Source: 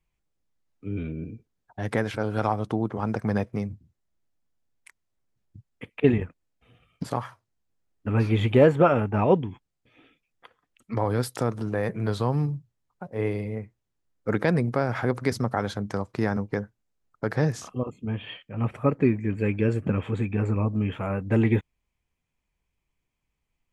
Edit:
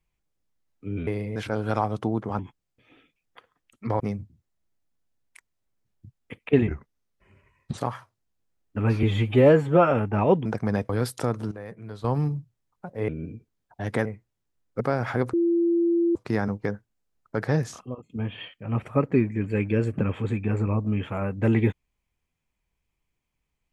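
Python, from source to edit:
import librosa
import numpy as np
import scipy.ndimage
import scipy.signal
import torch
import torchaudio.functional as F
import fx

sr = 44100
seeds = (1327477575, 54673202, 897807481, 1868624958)

y = fx.edit(x, sr, fx.swap(start_s=1.07, length_s=0.97, other_s=13.26, other_length_s=0.29),
    fx.swap(start_s=3.07, length_s=0.44, other_s=9.46, other_length_s=1.61),
    fx.speed_span(start_s=6.19, length_s=0.89, speed=0.81),
    fx.stretch_span(start_s=8.33, length_s=0.59, factor=1.5),
    fx.clip_gain(start_s=11.69, length_s=0.53, db=-12.0),
    fx.cut(start_s=14.3, length_s=0.39),
    fx.bleep(start_s=15.22, length_s=0.82, hz=340.0, db=-18.5),
    fx.fade_out_to(start_s=17.52, length_s=0.46, floor_db=-15.0), tone=tone)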